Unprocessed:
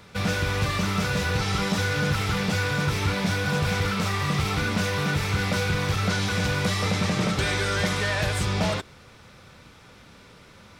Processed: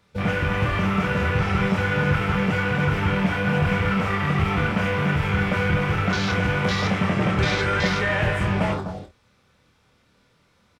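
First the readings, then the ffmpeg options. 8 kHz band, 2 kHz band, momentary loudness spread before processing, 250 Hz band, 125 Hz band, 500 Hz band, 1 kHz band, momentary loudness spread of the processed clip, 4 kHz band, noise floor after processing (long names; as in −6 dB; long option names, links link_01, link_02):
−9.0 dB, +3.0 dB, 1 LU, +4.5 dB, +2.5 dB, +3.5 dB, +3.5 dB, 2 LU, −3.0 dB, −62 dBFS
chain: -filter_complex "[0:a]asplit=2[link_01][link_02];[link_02]aecho=0:1:252:0.376[link_03];[link_01][link_03]amix=inputs=2:normalize=0,afwtdn=0.0282,asplit=2[link_04][link_05];[link_05]aecho=0:1:26|52:0.473|0.237[link_06];[link_04][link_06]amix=inputs=2:normalize=0,volume=2.5dB"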